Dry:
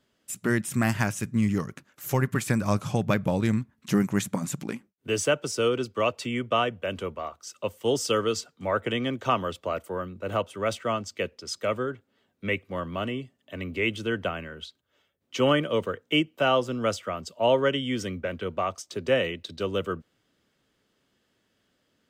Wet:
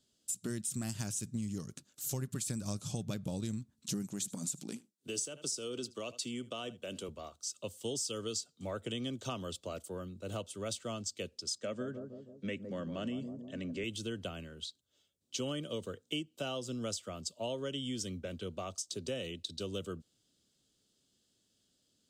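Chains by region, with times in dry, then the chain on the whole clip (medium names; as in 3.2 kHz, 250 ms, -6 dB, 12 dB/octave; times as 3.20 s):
4.09–7.09 s: high-pass 160 Hz + delay 76 ms -22.5 dB + compression 3:1, threshold -26 dBFS
11.58–13.84 s: cabinet simulation 130–7500 Hz, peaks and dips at 150 Hz +6 dB, 240 Hz +7 dB, 560 Hz +5 dB, 1.7 kHz +10 dB, 3.9 kHz -6 dB + bucket-brigade echo 159 ms, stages 1024, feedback 54%, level -9 dB
whole clip: ten-band graphic EQ 500 Hz -3 dB, 1 kHz -8 dB, 2 kHz -12 dB, 4 kHz +7 dB, 8 kHz +11 dB; compression 5:1, threshold -29 dBFS; trim -5.5 dB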